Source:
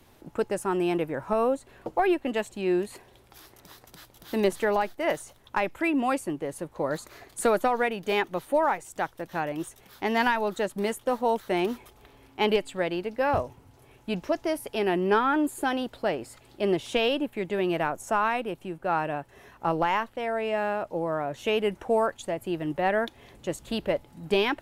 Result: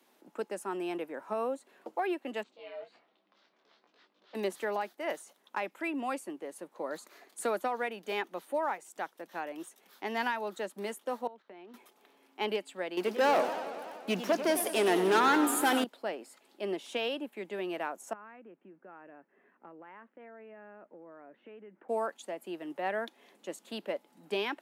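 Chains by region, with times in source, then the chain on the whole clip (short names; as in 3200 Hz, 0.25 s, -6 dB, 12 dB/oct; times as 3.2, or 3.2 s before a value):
2.43–4.35 LPF 4500 Hz 24 dB/oct + ring modulator 260 Hz + detuned doubles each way 20 cents
11.27–11.74 gate -43 dBFS, range -13 dB + compressor 5:1, threshold -39 dBFS + air absorption 230 m
12.97–15.84 high shelf 5400 Hz +6 dB + sample leveller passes 3 + warbling echo 96 ms, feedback 76%, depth 194 cents, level -11 dB
18.13–21.89 LPF 1900 Hz 24 dB/oct + bell 850 Hz -10.5 dB 1.8 oct + compressor 5:1, threshold -38 dBFS
whole clip: steep high-pass 190 Hz 48 dB/oct; low shelf 240 Hz -6.5 dB; gain -7.5 dB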